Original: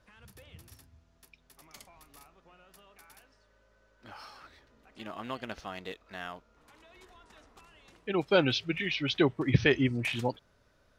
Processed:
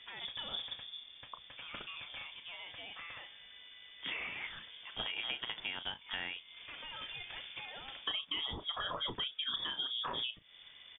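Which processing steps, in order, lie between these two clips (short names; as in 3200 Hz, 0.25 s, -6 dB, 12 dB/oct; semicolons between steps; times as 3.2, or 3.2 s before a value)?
limiter -22 dBFS, peak gain reduction 11 dB; compressor 12:1, threshold -46 dBFS, peak gain reduction 20 dB; doubler 35 ms -12.5 dB; inverted band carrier 3500 Hz; gain +10.5 dB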